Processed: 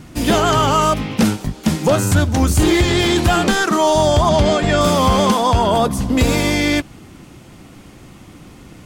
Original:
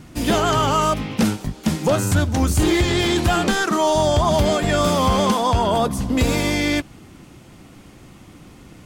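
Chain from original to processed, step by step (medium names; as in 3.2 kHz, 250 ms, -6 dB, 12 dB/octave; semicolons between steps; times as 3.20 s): 4.29–4.81 s: low-pass 6.9 kHz 12 dB/octave; trim +3.5 dB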